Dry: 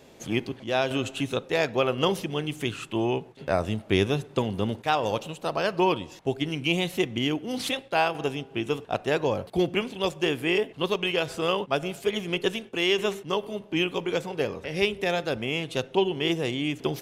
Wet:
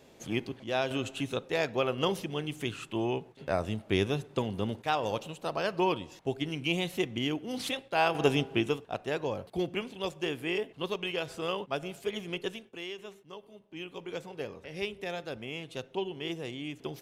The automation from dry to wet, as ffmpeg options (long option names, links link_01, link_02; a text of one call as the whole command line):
ffmpeg -i in.wav -af "volume=14dB,afade=type=in:start_time=7.96:duration=0.44:silence=0.298538,afade=type=out:start_time=8.4:duration=0.4:silence=0.223872,afade=type=out:start_time=12.29:duration=0.67:silence=0.266073,afade=type=in:start_time=13.7:duration=0.48:silence=0.375837" out.wav